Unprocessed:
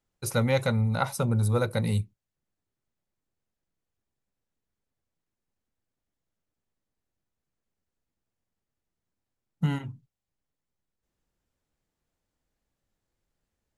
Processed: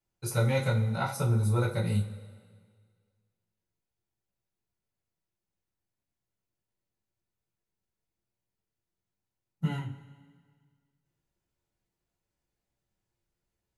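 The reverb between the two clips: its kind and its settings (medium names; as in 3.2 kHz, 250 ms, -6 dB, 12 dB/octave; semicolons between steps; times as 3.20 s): two-slope reverb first 0.27 s, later 1.8 s, from -19 dB, DRR -5.5 dB; trim -9.5 dB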